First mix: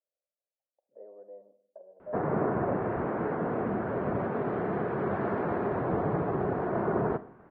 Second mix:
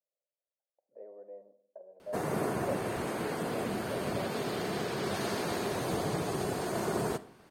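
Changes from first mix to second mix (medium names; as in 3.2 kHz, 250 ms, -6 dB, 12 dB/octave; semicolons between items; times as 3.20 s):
background -4.0 dB; master: remove low-pass 1.6 kHz 24 dB/octave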